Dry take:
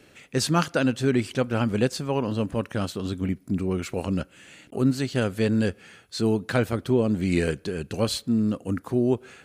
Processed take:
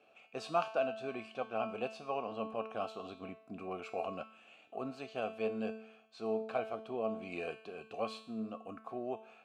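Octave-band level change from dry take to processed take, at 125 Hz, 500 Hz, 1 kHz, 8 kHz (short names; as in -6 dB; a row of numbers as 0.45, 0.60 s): -27.5 dB, -10.5 dB, -5.5 dB, under -25 dB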